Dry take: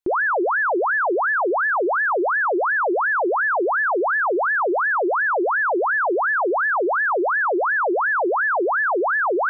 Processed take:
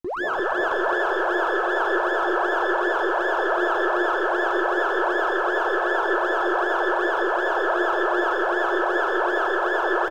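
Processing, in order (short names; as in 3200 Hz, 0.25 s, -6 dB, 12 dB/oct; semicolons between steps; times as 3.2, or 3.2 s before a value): tracing distortion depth 0.034 ms; low shelf 150 Hz +10.5 dB; notch 1200 Hz, Q 28; added harmonics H 7 -45 dB, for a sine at -17 dBFS; bouncing-ball echo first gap 0.32 s, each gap 0.6×, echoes 5; tempo 0.94×; digital reverb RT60 0.88 s, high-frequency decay 0.5×, pre-delay 0.1 s, DRR -1 dB; gain -8 dB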